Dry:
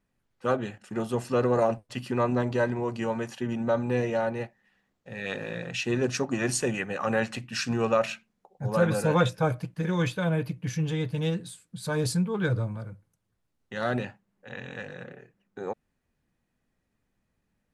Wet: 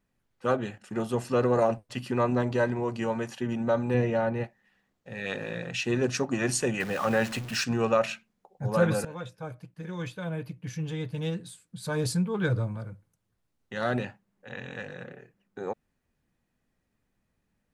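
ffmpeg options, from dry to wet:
-filter_complex "[0:a]asettb=1/sr,asplit=3[a][b][c];[a]atrim=end=3.944[d];[b]atrim=start=3.94:end=4.44,asetpts=PTS-STARTPTS,afade=t=in:d=0.004:c=qsin,afade=t=out:st=0.496:d=0.004:c=qsin,bass=f=250:g=5,treble=f=4k:g=-8[e];[c]atrim=start=4.436[f];[d][e]acrossfade=d=0.004:c1=hsin:c2=qsin[g];[g][f]acrossfade=d=0.004:c1=qsin:c2=hsin,asettb=1/sr,asplit=3[h][i][j];[h]atrim=end=6.804[k];[i]atrim=start=6.8:end=7.64,asetpts=PTS-STARTPTS,afade=t=in:d=0.004:c=qsin,afade=t=out:st=0.836:d=0.004:c=qsin,aeval=exprs='val(0)+0.5*0.0168*sgn(val(0))':c=same[l];[j]atrim=start=7.636[m];[k][l]acrossfade=d=0.004:c1=hsin:c2=qsin[n];[n][m]acrossfade=d=0.004:c1=qsin:c2=hsin,asplit=2[o][p];[o]atrim=end=9.05,asetpts=PTS-STARTPTS,afade=t=out:st=9.046:d=0.004:c=hsin:silence=0.11885[q];[p]atrim=start=9.05,asetpts=PTS-STARTPTS,afade=t=in:d=3.5:silence=0.11885[r];[q][r]concat=n=2:v=0:a=1"

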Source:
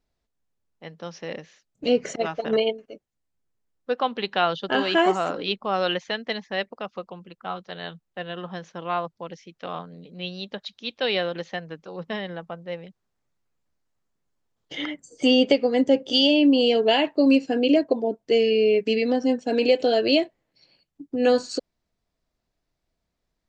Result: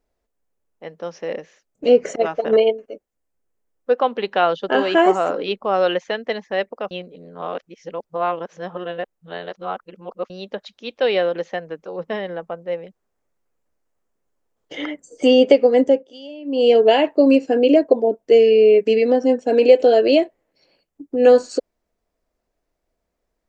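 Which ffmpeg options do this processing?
-filter_complex "[0:a]asplit=5[a][b][c][d][e];[a]atrim=end=6.912[f];[b]atrim=start=6.908:end=10.302,asetpts=PTS-STARTPTS,areverse[g];[c]atrim=start=10.298:end=16.08,asetpts=PTS-STARTPTS,afade=t=out:st=5.532:d=0.25:silence=0.0841395[h];[d]atrim=start=16.08:end=16.45,asetpts=PTS-STARTPTS,volume=-21.5dB[i];[e]atrim=start=16.45,asetpts=PTS-STARTPTS,afade=t=in:d=0.25:silence=0.0841395[j];[f][g]acrossfade=d=0.004:c1=hsin:c2=hsin[k];[h][i][j]concat=n=3:v=0:a=1[l];[k][l]acrossfade=d=0.004:c1=hsin:c2=hsin,equalizer=f=125:t=o:w=1:g=-9,equalizer=f=500:t=o:w=1:g=6,equalizer=f=4k:t=o:w=1:g=-7,volume=3dB"

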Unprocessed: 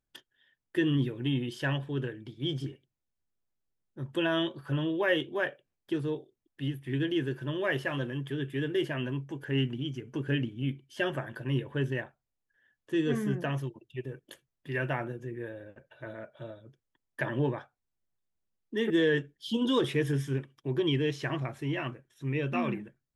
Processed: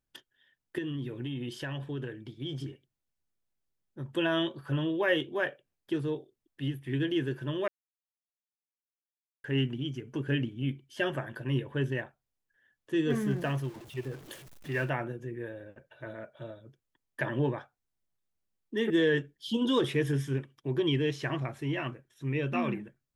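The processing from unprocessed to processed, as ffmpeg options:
-filter_complex "[0:a]asettb=1/sr,asplit=3[a][b][c];[a]atrim=end=0.784[d];[b]atrim=start=0.78:end=4.1,asetpts=PTS-STARTPTS,afade=t=in:d=0.004:c=qsin,afade=t=out:st=3.316:d=0.004:c=qsin,acompressor=threshold=-32dB:ratio=6:attack=3.2:release=140:knee=1:detection=peak[e];[c]atrim=start=4.096[f];[d][e]acrossfade=d=0.004:c1=hsin:c2=qsin[g];[g][f]acrossfade=d=0.004:c1=qsin:c2=hsin,asettb=1/sr,asplit=3[h][i][j];[h]atrim=end=13.104[k];[i]atrim=start=13.1:end=14.9,asetpts=PTS-STARTPTS,afade=t=in:d=0.004:c=qsin,afade=t=out:st=1.796:d=0.004:c=qsin,aeval=exprs='val(0)+0.5*0.00596*sgn(val(0))':c=same[l];[j]atrim=start=14.896[m];[k][l]acrossfade=d=0.004:c1=hsin:c2=qsin[n];[n][m]acrossfade=d=0.004:c1=qsin:c2=hsin,asplit=3[o][p][q];[o]atrim=end=7.68,asetpts=PTS-STARTPTS,afade=t=out:st=7.676:d=0.004:c=hsin[r];[p]atrim=start=7.68:end=9.44,asetpts=PTS-STARTPTS,volume=0[s];[q]atrim=start=9.44,asetpts=PTS-STARTPTS,afade=t=in:d=0.004:c=hsin[t];[r][s][t]concat=n=3:v=0:a=1"

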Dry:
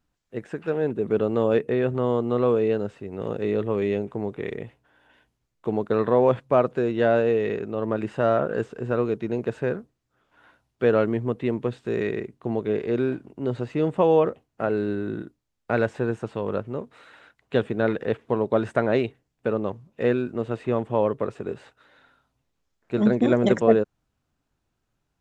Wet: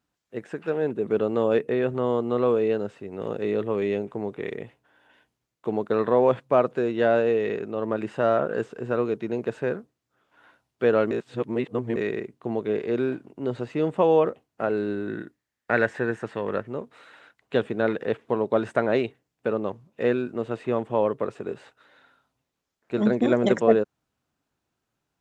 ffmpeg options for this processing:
-filter_complex "[0:a]asettb=1/sr,asplit=3[a][b][c];[a]atrim=end=15.084[d];[b]atrim=start=15.08:end=16.68,asetpts=PTS-STARTPTS,afade=t=in:d=0.004:c=qsin,afade=t=out:st=1.596:d=0.004:c=qsin,equalizer=f=1.8k:t=o:w=0.43:g=12.5[e];[c]atrim=start=16.676[f];[d][e]acrossfade=d=0.004:c1=hsin:c2=qsin[g];[g][f]acrossfade=d=0.004:c1=qsin:c2=hsin,asplit=3[h][i][j];[h]atrim=end=11.112[k];[i]atrim=start=11.108:end=11.962,asetpts=PTS-STARTPTS,areverse[l];[j]atrim=start=11.958[m];[k][l]acrossfade=d=0.004:c1=hsin:c2=hsin[n];[n][m]acrossfade=d=0.004:c1=hsin:c2=hsin,highpass=f=180:p=1"

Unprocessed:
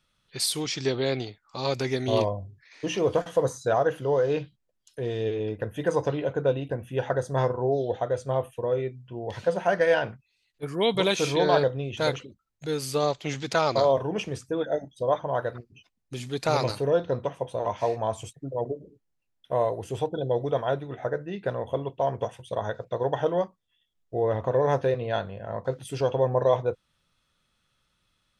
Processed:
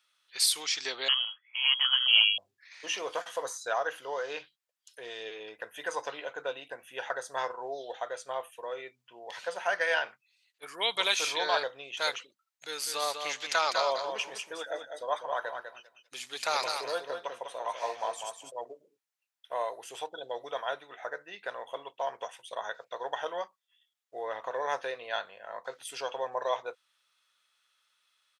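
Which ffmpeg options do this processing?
-filter_complex "[0:a]asettb=1/sr,asplit=3[a][b][c];[a]atrim=end=1.084[d];[b]atrim=start=1.08:end=2.38,asetpts=PTS-STARTPTS,afade=t=in:d=0.004:c=qsin,afade=t=out:st=1.296:d=0.004:c=qsin,lowpass=f=2.9k:t=q:w=0.5098,lowpass=f=2.9k:t=q:w=0.6013,lowpass=f=2.9k:t=q:w=0.9,lowpass=f=2.9k:t=q:w=2.563,afreqshift=-3400[e];[c]atrim=start=2.376[f];[d][e]acrossfade=d=0.004:c1=hsin:c2=qsin[g];[g][f]acrossfade=d=0.004:c1=qsin:c2=hsin,asplit=3[h][i][j];[h]afade=t=out:st=12.78:d=0.02[k];[i]aecho=1:1:199|398|597:0.473|0.0757|0.0121,afade=t=in:st=12.78:d=0.02,afade=t=out:st=18.5:d=0.02[l];[j]afade=t=in:st=18.5:d=0.02[m];[k][l][m]amix=inputs=3:normalize=0,highpass=1.1k,volume=1.5dB"

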